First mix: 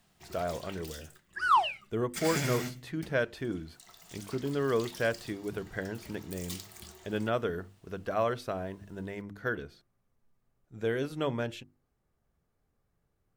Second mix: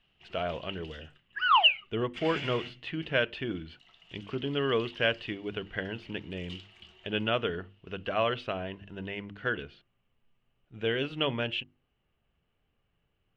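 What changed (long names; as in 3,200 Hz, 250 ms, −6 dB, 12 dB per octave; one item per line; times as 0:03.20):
first sound −9.0 dB
second sound: add high-frequency loss of the air 130 metres
master: add low-pass with resonance 2,900 Hz, resonance Q 8.7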